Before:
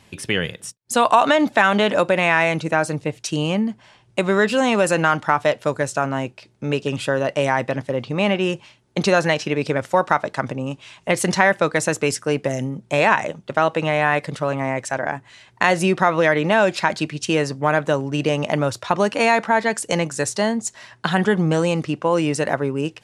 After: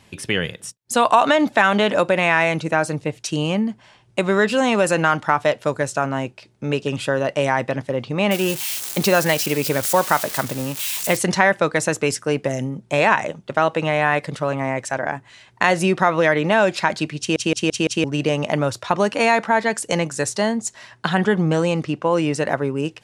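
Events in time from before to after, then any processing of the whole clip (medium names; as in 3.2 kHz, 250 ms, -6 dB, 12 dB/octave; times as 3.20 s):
8.31–11.17 s: zero-crossing glitches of -16.5 dBFS
17.19 s: stutter in place 0.17 s, 5 plays
21.08–22.51 s: treble shelf 9.7 kHz -8 dB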